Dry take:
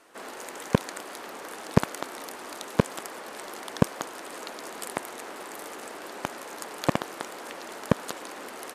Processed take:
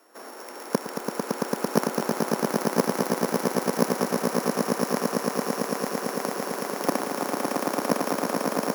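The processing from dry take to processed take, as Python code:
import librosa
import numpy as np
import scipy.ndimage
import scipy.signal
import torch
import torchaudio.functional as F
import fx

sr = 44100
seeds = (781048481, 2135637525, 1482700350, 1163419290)

y = np.r_[np.sort(x[:len(x) // 8 * 8].reshape(-1, 8), axis=1).ravel(), x[len(x) // 8 * 8:]]
y = scipy.signal.sosfilt(scipy.signal.butter(4, 210.0, 'highpass', fs=sr, output='sos'), y)
y = fx.peak_eq(y, sr, hz=3800.0, db=-10.5, octaves=0.91)
y = fx.echo_swell(y, sr, ms=112, loudest=8, wet_db=-4.0)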